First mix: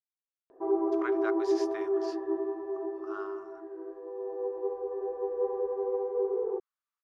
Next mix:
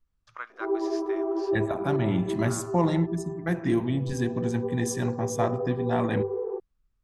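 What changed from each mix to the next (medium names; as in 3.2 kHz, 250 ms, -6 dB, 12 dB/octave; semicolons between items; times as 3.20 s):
first voice: entry -0.65 s; second voice: unmuted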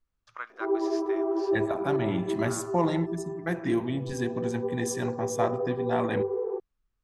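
second voice: add tone controls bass -6 dB, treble -1 dB; background: remove distance through air 230 m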